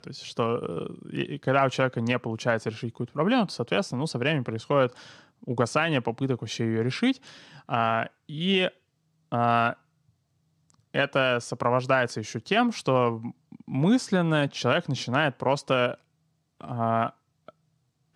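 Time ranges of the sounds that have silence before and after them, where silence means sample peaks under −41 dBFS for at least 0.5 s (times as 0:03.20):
0:09.32–0:09.73
0:10.70–0:15.95
0:16.61–0:17.49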